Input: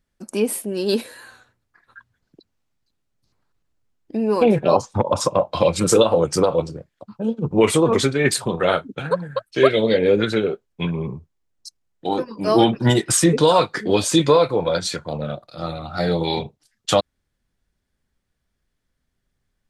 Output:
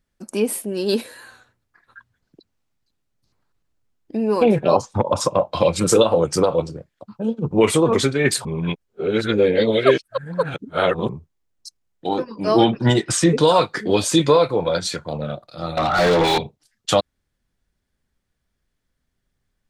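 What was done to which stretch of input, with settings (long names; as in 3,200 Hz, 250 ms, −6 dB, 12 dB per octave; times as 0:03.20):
0:08.45–0:11.09: reverse
0:12.09–0:13.35: low-pass filter 7,200 Hz
0:15.77–0:16.38: mid-hump overdrive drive 29 dB, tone 2,200 Hz, clips at −9 dBFS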